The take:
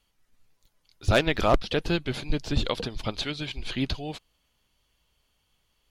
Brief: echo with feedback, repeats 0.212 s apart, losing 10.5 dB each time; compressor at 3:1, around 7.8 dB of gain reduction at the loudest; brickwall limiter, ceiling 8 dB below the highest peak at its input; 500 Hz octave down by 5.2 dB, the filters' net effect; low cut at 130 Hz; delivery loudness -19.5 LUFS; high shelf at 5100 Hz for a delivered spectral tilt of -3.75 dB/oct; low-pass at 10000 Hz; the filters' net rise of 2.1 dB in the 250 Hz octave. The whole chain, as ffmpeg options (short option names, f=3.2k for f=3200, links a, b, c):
-af "highpass=130,lowpass=10k,equalizer=f=250:t=o:g=6,equalizer=f=500:t=o:g=-8.5,highshelf=f=5.1k:g=-4,acompressor=threshold=-29dB:ratio=3,alimiter=level_in=1dB:limit=-24dB:level=0:latency=1,volume=-1dB,aecho=1:1:212|424|636:0.299|0.0896|0.0269,volume=17dB"